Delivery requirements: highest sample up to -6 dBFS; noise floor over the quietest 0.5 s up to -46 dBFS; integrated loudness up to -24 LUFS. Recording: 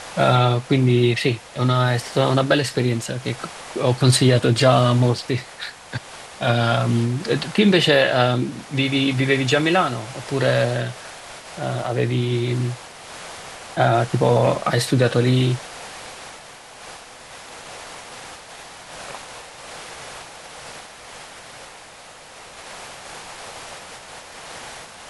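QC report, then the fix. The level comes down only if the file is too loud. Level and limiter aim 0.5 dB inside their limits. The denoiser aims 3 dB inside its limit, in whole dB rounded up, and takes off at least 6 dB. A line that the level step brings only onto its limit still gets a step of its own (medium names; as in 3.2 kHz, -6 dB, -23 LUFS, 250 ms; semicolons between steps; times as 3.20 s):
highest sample -3.0 dBFS: fail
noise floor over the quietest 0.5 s -42 dBFS: fail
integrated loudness -19.5 LUFS: fail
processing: trim -5 dB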